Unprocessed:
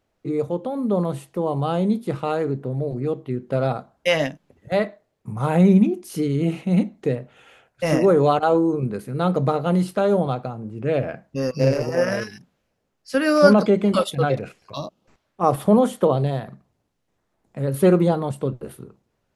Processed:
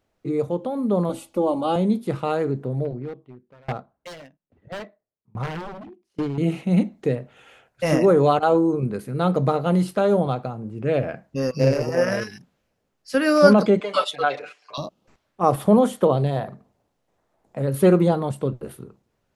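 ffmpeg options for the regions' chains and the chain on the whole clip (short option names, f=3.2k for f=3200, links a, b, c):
-filter_complex "[0:a]asettb=1/sr,asplit=3[a][b][c];[a]atrim=end=1.094[d];[b]atrim=start=1.09:end=1.76,asetpts=PTS-STARTPTS,afade=t=in:d=0.004:c=qsin,afade=t=out:st=0.666:d=0.004:c=qsin,equalizer=f=1.8k:t=o:w=0.26:g=-13,aecho=1:1:3.5:0.92,atrim=end_sample=29547[e];[c]atrim=start=1.756[f];[d][e]acrossfade=d=0.004:c1=hsin:c2=qsin[g];[g][f]acrossfade=d=0.004:c1=qsin:c2=hsin,asettb=1/sr,asplit=3[h][i][j];[h]atrim=end=2.854[k];[i]atrim=start=2.85:end=6.38,asetpts=PTS-STARTPTS,afade=t=in:d=0.004:c=qsin,afade=t=out:st=3.526:d=0.004:c=qsin,aeval=exprs='0.133*(abs(mod(val(0)/0.133+3,4)-2)-1)':c=same,adynamicsmooth=sensitivity=6.5:basefreq=3k,aeval=exprs='val(0)*pow(10,-30*if(lt(mod(1.2*n/s,1),2*abs(1.2)/1000),1-mod(1.2*n/s,1)/(2*abs(1.2)/1000),(mod(1.2*n/s,1)-2*abs(1.2)/1000)/(1-2*abs(1.2)/1000))/20)':c=same[l];[j]atrim=start=6.376[m];[k][l]acrossfade=d=0.004:c1=hsin:c2=qsin[n];[n][m]acrossfade=d=0.004:c1=qsin:c2=hsin,asettb=1/sr,asplit=3[o][p][q];[o]atrim=end=13.804[r];[p]atrim=start=13.8:end=14.78,asetpts=PTS-STARTPTS,afade=t=in:d=0.004:c=qsin,afade=t=out:st=0.976:d=0.004:c=qsin,highpass=690,lowpass=6.2k,aecho=1:1:6.8:0.97,atrim=end_sample=43218[s];[q]atrim=start=14.776[t];[r][s]acrossfade=d=0.004:c1=hsin:c2=qsin[u];[u][t]acrossfade=d=0.004:c1=qsin:c2=hsin,asettb=1/sr,asplit=3[v][w][x];[v]atrim=end=16.364[y];[w]atrim=start=16.36:end=17.62,asetpts=PTS-STARTPTS,afade=t=in:d=0.004:c=qsin,afade=t=out:st=1.256:d=0.004:c=qsin,equalizer=f=660:t=o:w=1.6:g=7,bandreject=f=50:t=h:w=6,bandreject=f=100:t=h:w=6,bandreject=f=150:t=h:w=6,bandreject=f=200:t=h:w=6,bandreject=f=250:t=h:w=6,bandreject=f=300:t=h:w=6,bandreject=f=350:t=h:w=6,bandreject=f=400:t=h:w=6,bandreject=f=450:t=h:w=6[z];[x]atrim=start=17.616[aa];[y][z]acrossfade=d=0.004:c1=hsin:c2=qsin[ab];[ab][aa]acrossfade=d=0.004:c1=qsin:c2=hsin"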